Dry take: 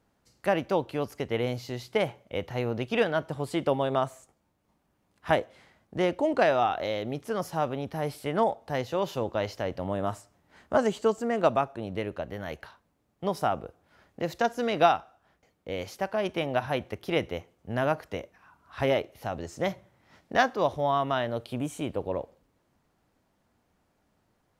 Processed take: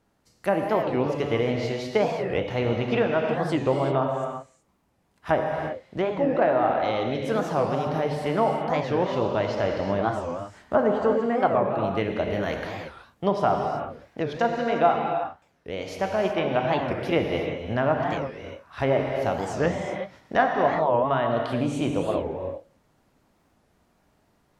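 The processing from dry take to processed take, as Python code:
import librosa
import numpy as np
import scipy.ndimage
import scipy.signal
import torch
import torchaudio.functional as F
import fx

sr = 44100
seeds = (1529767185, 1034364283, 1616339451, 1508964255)

p1 = fx.env_lowpass_down(x, sr, base_hz=1600.0, full_db=-21.5)
p2 = fx.rider(p1, sr, range_db=10, speed_s=0.5)
p3 = p1 + (p2 * 10.0 ** (1.0 / 20.0))
p4 = fx.rev_gated(p3, sr, seeds[0], gate_ms=400, shape='flat', drr_db=1.5)
p5 = fx.record_warp(p4, sr, rpm=45.0, depth_cents=250.0)
y = p5 * 10.0 ** (-4.0 / 20.0)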